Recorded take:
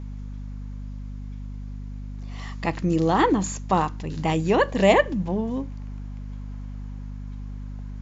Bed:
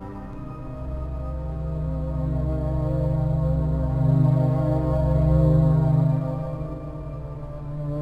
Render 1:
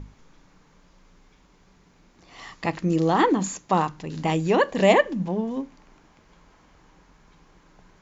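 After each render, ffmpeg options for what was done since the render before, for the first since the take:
ffmpeg -i in.wav -af "bandreject=frequency=50:width_type=h:width=6,bandreject=frequency=100:width_type=h:width=6,bandreject=frequency=150:width_type=h:width=6,bandreject=frequency=200:width_type=h:width=6,bandreject=frequency=250:width_type=h:width=6" out.wav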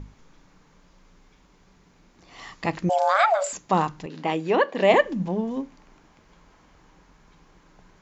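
ffmpeg -i in.wav -filter_complex "[0:a]asettb=1/sr,asplit=3[link_01][link_02][link_03];[link_01]atrim=end=2.894[link_04];[link_02]atrim=start=2.89:end=3.53,asetpts=PTS-STARTPTS,afade=type=in:duration=0.004:curve=qsin,afade=type=out:start_time=0.636:duration=0.004:curve=qsin,afreqshift=380[link_05];[link_03]atrim=start=3.526[link_06];[link_04][link_05]acrossfade=duration=0.004:curve1=hsin:curve2=qsin[link_07];[link_07][link_06]acrossfade=duration=0.004:curve1=qsin:curve2=hsin,asettb=1/sr,asplit=3[link_08][link_09][link_10];[link_08]atrim=end=4.064[link_11];[link_09]atrim=start=4.06:end=4.94,asetpts=PTS-STARTPTS,afade=type=in:duration=0.004:curve=qsin,afade=type=out:start_time=0.876:duration=0.004:curve=qsin,highpass=270,lowpass=3900[link_12];[link_10]atrim=start=4.936[link_13];[link_11][link_12]acrossfade=duration=0.004:curve1=hsin:curve2=qsin[link_14];[link_14][link_13]acrossfade=duration=0.004:curve1=qsin:curve2=hsin" out.wav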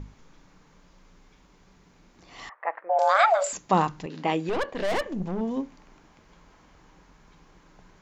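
ffmpeg -i in.wav -filter_complex "[0:a]asettb=1/sr,asplit=3[link_01][link_02][link_03];[link_01]atrim=end=2.494[link_04];[link_02]atrim=start=2.49:end=2.99,asetpts=PTS-STARTPTS,afade=type=in:duration=0.004:curve=qsin,afade=type=out:start_time=0.496:duration=0.004:curve=qsin,asuperpass=centerf=1000:order=8:qfactor=0.74[link_05];[link_03]atrim=start=2.986[link_06];[link_04][link_05]acrossfade=duration=0.004:curve1=hsin:curve2=qsin[link_07];[link_07][link_06]acrossfade=duration=0.004:curve1=qsin:curve2=hsin,asettb=1/sr,asplit=3[link_08][link_09][link_10];[link_08]atrim=end=4.494[link_11];[link_09]atrim=start=4.49:end=5.41,asetpts=PTS-STARTPTS,afade=type=in:duration=0.004:curve=qsin,afade=type=out:start_time=0.916:duration=0.004:curve=qsin,aeval=exprs='(tanh(15.8*val(0)+0.55)-tanh(0.55))/15.8':channel_layout=same[link_12];[link_10]atrim=start=5.406[link_13];[link_11][link_12]acrossfade=duration=0.004:curve1=hsin:curve2=qsin[link_14];[link_14][link_13]acrossfade=duration=0.004:curve1=qsin:curve2=hsin" out.wav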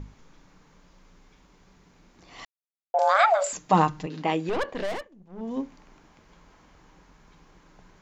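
ffmpeg -i in.wav -filter_complex "[0:a]asettb=1/sr,asplit=3[link_01][link_02][link_03];[link_01]atrim=end=3.574[link_04];[link_02]atrim=start=3.57:end=4.22,asetpts=PTS-STARTPTS,afade=type=in:duration=0.004:curve=qsin,afade=type=out:start_time=0.646:duration=0.004:curve=qsin,aecho=1:1:6.5:0.57,atrim=end_sample=28665[link_05];[link_03]atrim=start=4.216[link_06];[link_04][link_05]acrossfade=duration=0.004:curve1=hsin:curve2=qsin[link_07];[link_07][link_06]acrossfade=duration=0.004:curve1=qsin:curve2=hsin,asplit=5[link_08][link_09][link_10][link_11][link_12];[link_08]atrim=end=2.45,asetpts=PTS-STARTPTS,afade=type=out:start_time=2.446:duration=0.004:curve=hsin[link_13];[link_09]atrim=start=2.45:end=2.94,asetpts=PTS-STARTPTS,volume=0[link_14];[link_10]atrim=start=2.94:end=5.09,asetpts=PTS-STARTPTS,afade=type=in:duration=0.004:curve=hsin,afade=type=out:start_time=1.83:duration=0.32:silence=0.0794328[link_15];[link_11]atrim=start=5.09:end=5.29,asetpts=PTS-STARTPTS,volume=-22dB[link_16];[link_12]atrim=start=5.29,asetpts=PTS-STARTPTS,afade=type=in:duration=0.32:silence=0.0794328[link_17];[link_13][link_14][link_15][link_16][link_17]concat=n=5:v=0:a=1" out.wav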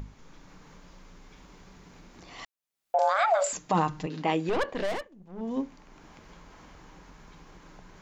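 ffmpeg -i in.wav -af "alimiter=limit=-15dB:level=0:latency=1:release=90,acompressor=mode=upward:threshold=-43dB:ratio=2.5" out.wav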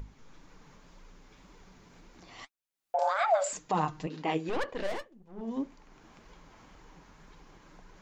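ffmpeg -i in.wav -af "flanger=delay=2:depth=7.2:regen=47:speed=1.9:shape=sinusoidal" out.wav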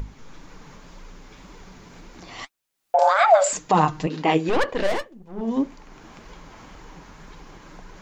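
ffmpeg -i in.wav -af "volume=11dB" out.wav

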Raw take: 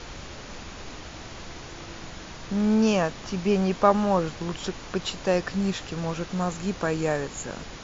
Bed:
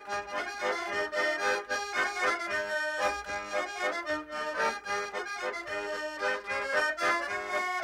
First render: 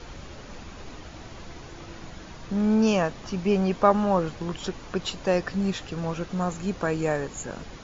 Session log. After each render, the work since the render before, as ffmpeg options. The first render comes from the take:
ffmpeg -i in.wav -af "afftdn=noise_reduction=6:noise_floor=-41" out.wav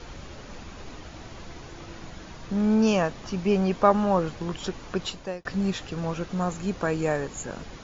ffmpeg -i in.wav -filter_complex "[0:a]asplit=2[link_01][link_02];[link_01]atrim=end=5.45,asetpts=PTS-STARTPTS,afade=type=out:start_time=5.02:duration=0.43[link_03];[link_02]atrim=start=5.45,asetpts=PTS-STARTPTS,afade=type=in:duration=0.004:curve=hsin[link_04];[link_03][link_04]concat=n=2:v=0:a=1" out.wav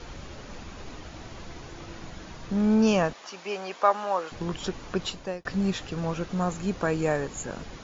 ffmpeg -i in.wav -filter_complex "[0:a]asettb=1/sr,asplit=3[link_01][link_02][link_03];[link_01]atrim=end=3.134[link_04];[link_02]atrim=start=3.13:end=4.32,asetpts=PTS-STARTPTS,afade=type=in:duration=0.004:curve=qsin,afade=type=out:start_time=1.186:duration=0.004:curve=qsin,highpass=660[link_05];[link_03]atrim=start=4.316[link_06];[link_04][link_05]acrossfade=duration=0.004:curve1=hsin:curve2=qsin[link_07];[link_07][link_06]acrossfade=duration=0.004:curve1=qsin:curve2=hsin" out.wav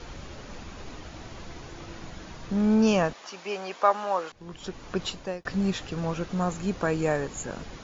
ffmpeg -i in.wav -filter_complex "[0:a]asplit=2[link_01][link_02];[link_01]atrim=end=4.32,asetpts=PTS-STARTPTS,afade=type=out:start_time=4.316:duration=0.004:curve=hsin:silence=0.0794328[link_03];[link_02]atrim=start=4.32,asetpts=PTS-STARTPTS,afade=type=in:duration=0.71:silence=0.0794328[link_04];[link_03][link_04]concat=n=2:v=0:a=1" out.wav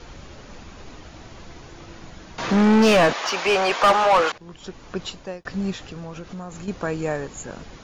ffmpeg -i in.wav -filter_complex "[0:a]asettb=1/sr,asplit=3[link_01][link_02][link_03];[link_01]atrim=end=2.384[link_04];[link_02]atrim=start=2.38:end=4.38,asetpts=PTS-STARTPTS,afade=type=in:duration=0.004:curve=qsin,afade=type=out:start_time=1.996:duration=0.004:curve=qsin,asplit=2[link_05][link_06];[link_06]highpass=frequency=720:poles=1,volume=28dB,asoftclip=type=tanh:threshold=-7.5dB[link_07];[link_05][link_07]amix=inputs=2:normalize=0,lowpass=frequency=3100:poles=1,volume=-6dB[link_08];[link_03]atrim=start=4.376[link_09];[link_04][link_08]acrossfade=duration=0.004:curve1=hsin:curve2=qsin[link_10];[link_10][link_09]acrossfade=duration=0.004:curve1=qsin:curve2=hsin,asettb=1/sr,asplit=3[link_11][link_12][link_13];[link_11]atrim=end=5.734[link_14];[link_12]atrim=start=5.73:end=6.68,asetpts=PTS-STARTPTS,afade=type=in:duration=0.004:curve=qsin,afade=type=out:start_time=0.946:duration=0.004:curve=qsin,acompressor=threshold=-31dB:ratio=6:attack=3.2:release=140:knee=1:detection=peak[link_15];[link_13]atrim=start=6.676[link_16];[link_14][link_15]acrossfade=duration=0.004:curve1=hsin:curve2=qsin[link_17];[link_17][link_16]acrossfade=duration=0.004:curve1=qsin:curve2=hsin" out.wav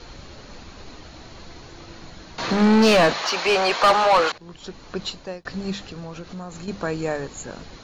ffmpeg -i in.wav -af "equalizer=frequency=4200:width_type=o:width=0.2:gain=9.5,bandreject=frequency=50:width_type=h:width=6,bandreject=frequency=100:width_type=h:width=6,bandreject=frequency=150:width_type=h:width=6,bandreject=frequency=200:width_type=h:width=6" out.wav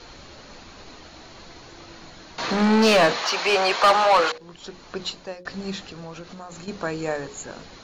ffmpeg -i in.wav -af "lowshelf=frequency=170:gain=-7,bandreject=frequency=60:width_type=h:width=6,bandreject=frequency=120:width_type=h:width=6,bandreject=frequency=180:width_type=h:width=6,bandreject=frequency=240:width_type=h:width=6,bandreject=frequency=300:width_type=h:width=6,bandreject=frequency=360:width_type=h:width=6,bandreject=frequency=420:width_type=h:width=6,bandreject=frequency=480:width_type=h:width=6,bandreject=frequency=540:width_type=h:width=6" out.wav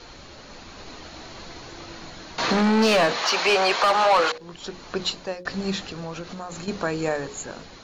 ffmpeg -i in.wav -af "dynaudnorm=framelen=170:gausssize=9:maxgain=4dB,alimiter=limit=-12dB:level=0:latency=1:release=265" out.wav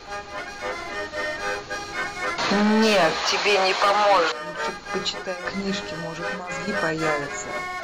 ffmpeg -i in.wav -i bed.wav -filter_complex "[1:a]volume=1dB[link_01];[0:a][link_01]amix=inputs=2:normalize=0" out.wav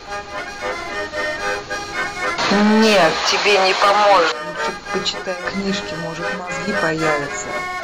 ffmpeg -i in.wav -af "volume=5.5dB" out.wav

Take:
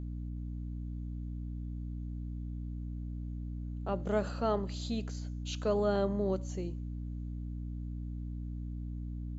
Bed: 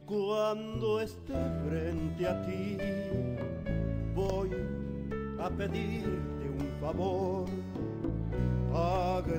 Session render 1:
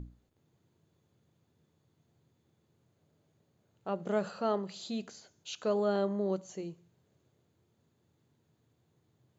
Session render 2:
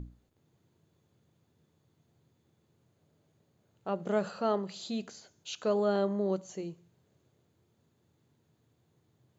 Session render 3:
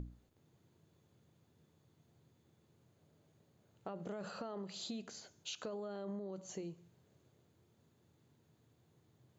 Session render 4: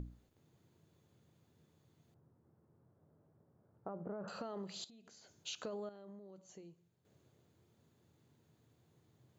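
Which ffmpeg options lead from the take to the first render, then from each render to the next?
ffmpeg -i in.wav -af "bandreject=frequency=60:width_type=h:width=6,bandreject=frequency=120:width_type=h:width=6,bandreject=frequency=180:width_type=h:width=6,bandreject=frequency=240:width_type=h:width=6,bandreject=frequency=300:width_type=h:width=6" out.wav
ffmpeg -i in.wav -af "volume=1.5dB" out.wav
ffmpeg -i in.wav -af "alimiter=level_in=5dB:limit=-24dB:level=0:latency=1:release=23,volume=-5dB,acompressor=threshold=-41dB:ratio=6" out.wav
ffmpeg -i in.wav -filter_complex "[0:a]asettb=1/sr,asplit=3[link_01][link_02][link_03];[link_01]atrim=end=2.144[link_04];[link_02]atrim=start=2.14:end=4.28,asetpts=PTS-STARTPTS,afade=type=in:duration=0.004:curve=qsin,afade=type=out:start_time=2.136:duration=0.004:curve=qsin,lowpass=frequency=1400:width=0.5412,lowpass=frequency=1400:width=1.3066[link_05];[link_03]atrim=start=4.276[link_06];[link_04][link_05]acrossfade=duration=0.004:curve1=hsin:curve2=qsin[link_07];[link_07][link_06]acrossfade=duration=0.004:curve1=qsin:curve2=hsin,asettb=1/sr,asplit=3[link_08][link_09][link_10];[link_08]atrim=end=4.844[link_11];[link_09]atrim=start=4.84:end=5.35,asetpts=PTS-STARTPTS,afade=type=in:duration=0.004:curve=qsin,afade=type=out:start_time=0.506:duration=0.004:curve=qsin,acompressor=threshold=-57dB:ratio=16:attack=3.2:release=140:knee=1:detection=peak[link_12];[link_10]atrim=start=5.346[link_13];[link_11][link_12]acrossfade=duration=0.004:curve1=hsin:curve2=qsin[link_14];[link_14][link_13]acrossfade=duration=0.004:curve1=qsin:curve2=hsin,asplit=3[link_15][link_16][link_17];[link_15]atrim=end=5.892[link_18];[link_16]atrim=start=5.888:end=7.052,asetpts=PTS-STARTPTS,volume=-10.5dB[link_19];[link_17]atrim=start=7.048[link_20];[link_18][link_19]acrossfade=duration=0.004:curve1=hsin:curve2=hsin[link_21];[link_21][link_20]acrossfade=duration=0.004:curve1=hsin:curve2=hsin" out.wav

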